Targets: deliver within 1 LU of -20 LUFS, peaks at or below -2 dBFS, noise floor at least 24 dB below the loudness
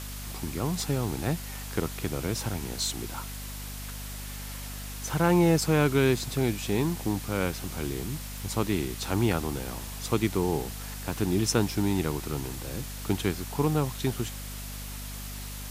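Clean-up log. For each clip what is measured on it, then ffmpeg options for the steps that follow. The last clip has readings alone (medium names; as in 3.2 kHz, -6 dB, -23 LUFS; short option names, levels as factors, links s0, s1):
hum 50 Hz; highest harmonic 250 Hz; hum level -37 dBFS; noise floor -38 dBFS; noise floor target -54 dBFS; loudness -29.5 LUFS; peak level -9.0 dBFS; loudness target -20.0 LUFS
-> -af "bandreject=f=50:t=h:w=4,bandreject=f=100:t=h:w=4,bandreject=f=150:t=h:w=4,bandreject=f=200:t=h:w=4,bandreject=f=250:t=h:w=4"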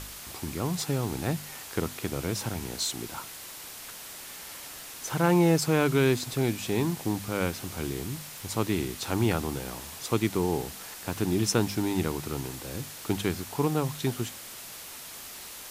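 hum not found; noise floor -43 dBFS; noise floor target -54 dBFS
-> -af "afftdn=nr=11:nf=-43"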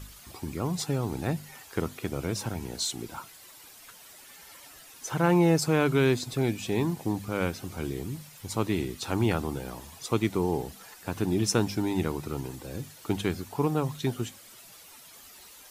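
noise floor -51 dBFS; noise floor target -54 dBFS
-> -af "afftdn=nr=6:nf=-51"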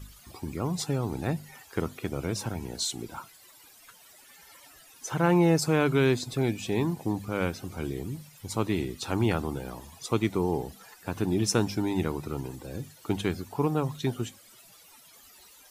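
noise floor -55 dBFS; loudness -29.5 LUFS; peak level -10.0 dBFS; loudness target -20.0 LUFS
-> -af "volume=2.99,alimiter=limit=0.794:level=0:latency=1"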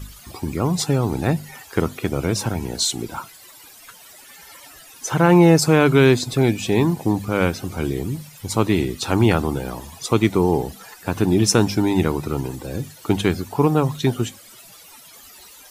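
loudness -20.0 LUFS; peak level -2.0 dBFS; noise floor -45 dBFS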